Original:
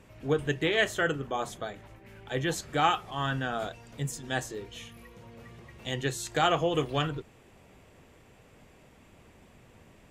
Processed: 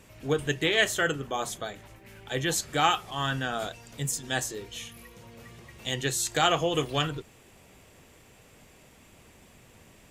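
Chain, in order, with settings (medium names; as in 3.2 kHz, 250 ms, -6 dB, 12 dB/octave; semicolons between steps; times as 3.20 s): treble shelf 3.4 kHz +10.5 dB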